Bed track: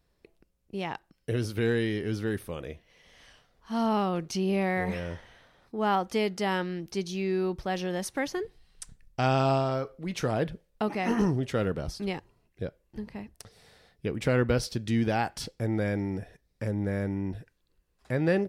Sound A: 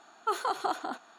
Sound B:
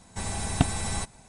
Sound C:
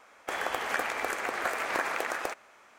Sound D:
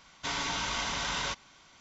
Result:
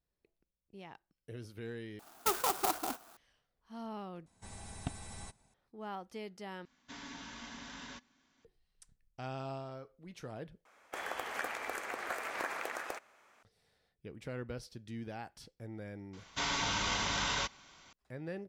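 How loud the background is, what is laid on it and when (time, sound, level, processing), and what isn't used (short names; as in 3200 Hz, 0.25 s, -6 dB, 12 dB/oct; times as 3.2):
bed track -17 dB
1.99 replace with A -1.5 dB + clock jitter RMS 0.11 ms
4.26 replace with B -17 dB
6.65 replace with D -17 dB + small resonant body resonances 250/1700 Hz, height 18 dB, ringing for 80 ms
10.65 replace with C -8 dB + high shelf 11000 Hz +2.5 dB
16.13 add D -1 dB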